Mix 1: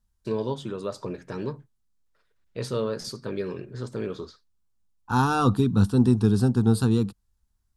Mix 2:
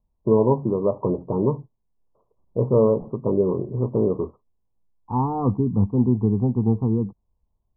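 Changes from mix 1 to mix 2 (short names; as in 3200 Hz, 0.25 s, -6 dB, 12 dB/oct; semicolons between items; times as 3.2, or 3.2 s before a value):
first voice +10.5 dB; master: add steep low-pass 1100 Hz 96 dB/oct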